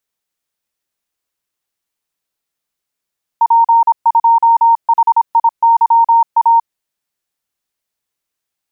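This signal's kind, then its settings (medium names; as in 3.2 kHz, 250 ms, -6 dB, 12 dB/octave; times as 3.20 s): Morse "P2HIYA" 26 wpm 923 Hz -5.5 dBFS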